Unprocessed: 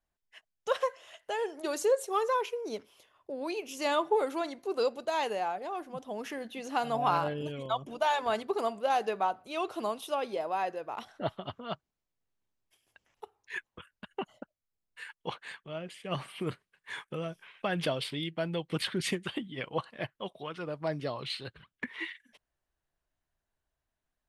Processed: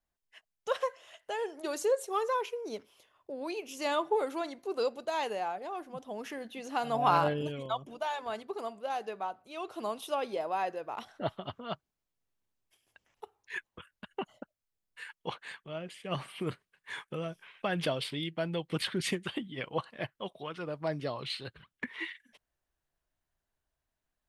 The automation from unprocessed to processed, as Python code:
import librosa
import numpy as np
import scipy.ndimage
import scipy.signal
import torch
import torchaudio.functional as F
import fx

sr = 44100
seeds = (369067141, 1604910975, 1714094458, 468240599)

y = fx.gain(x, sr, db=fx.line((6.78, -2.0), (7.26, 4.0), (8.1, -7.0), (9.57, -7.0), (9.99, -0.5)))